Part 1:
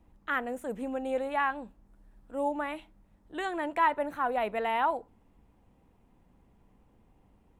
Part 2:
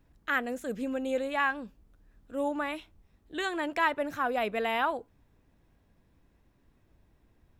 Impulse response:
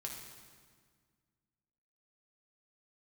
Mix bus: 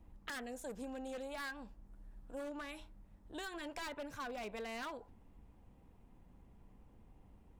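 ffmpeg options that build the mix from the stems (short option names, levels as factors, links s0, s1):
-filter_complex "[0:a]acompressor=threshold=0.0316:ratio=6,volume=0.794,asplit=2[s0][s1];[1:a]lowpass=7000,volume=15.8,asoftclip=hard,volume=0.0631,volume=-1,volume=0.75[s2];[s1]apad=whole_len=335060[s3];[s2][s3]sidechaingate=range=0.0224:threshold=0.00224:ratio=16:detection=peak[s4];[s0][s4]amix=inputs=2:normalize=0,lowshelf=f=130:g=6,aeval=exprs='0.0224*(abs(mod(val(0)/0.0224+3,4)-2)-1)':c=same,acompressor=threshold=0.00891:ratio=6"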